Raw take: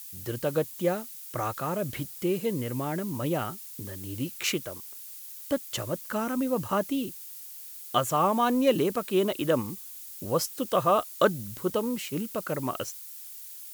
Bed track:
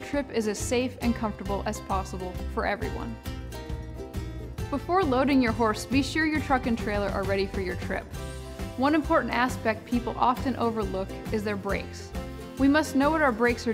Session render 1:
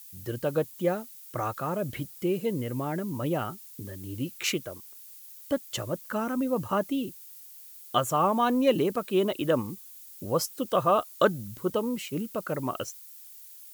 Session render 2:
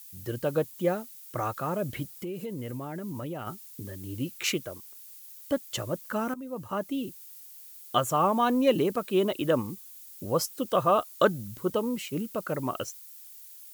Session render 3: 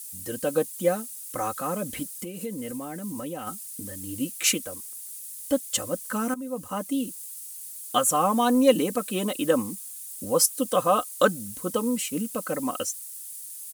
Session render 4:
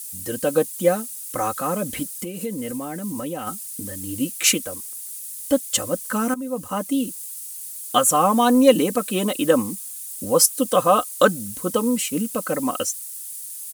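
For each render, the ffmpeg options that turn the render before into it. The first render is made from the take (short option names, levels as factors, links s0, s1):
-af "afftdn=nr=6:nf=-43"
-filter_complex "[0:a]asettb=1/sr,asplit=3[s0][s1][s2];[s0]atrim=end=2.064[s3];[s1]atrim=start=2.06:end=3.47,asetpts=PTS-STARTPTS,afade=t=in:d=0.004:c=qsin,afade=t=out:st=1.406:d=0.004:c=qsin,acompressor=threshold=0.0251:ratio=6:attack=3.2:release=140:knee=1:detection=peak[s4];[s2]atrim=start=3.466[s5];[s3][s4]acrossfade=d=0.004:c1=hsin:c2=qsin[s6];[s6][s5]acrossfade=d=0.004:c1=qsin:c2=hsin,asplit=2[s7][s8];[s7]atrim=end=6.34,asetpts=PTS-STARTPTS,afade=t=out:st=6.336:d=0.004:c=hsin:silence=0.177828[s9];[s8]atrim=start=6.34,asetpts=PTS-STARTPTS,afade=t=in:d=0.86:silence=0.177828[s10];[s9][s10]concat=n=2:v=0:a=1"
-af "equalizer=f=9400:t=o:w=0.96:g=15,aecho=1:1:3.9:0.73"
-af "volume=1.78,alimiter=limit=0.794:level=0:latency=1"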